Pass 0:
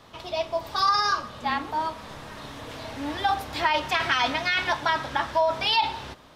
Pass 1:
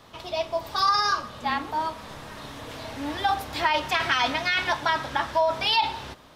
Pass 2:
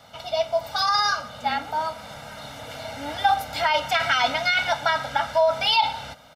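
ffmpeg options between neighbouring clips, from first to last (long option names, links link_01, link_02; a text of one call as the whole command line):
ffmpeg -i in.wav -af "highshelf=frequency=9900:gain=4.5" out.wav
ffmpeg -i in.wav -af "highpass=frequency=150:poles=1,aecho=1:1:1.4:0.86" out.wav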